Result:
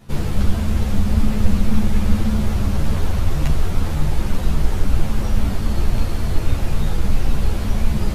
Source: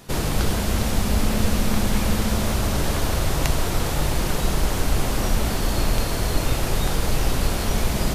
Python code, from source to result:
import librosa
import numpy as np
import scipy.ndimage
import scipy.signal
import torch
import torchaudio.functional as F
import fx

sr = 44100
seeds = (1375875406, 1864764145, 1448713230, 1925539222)

y = fx.bass_treble(x, sr, bass_db=9, treble_db=-5)
y = fx.ensemble(y, sr)
y = F.gain(torch.from_numpy(y), -1.5).numpy()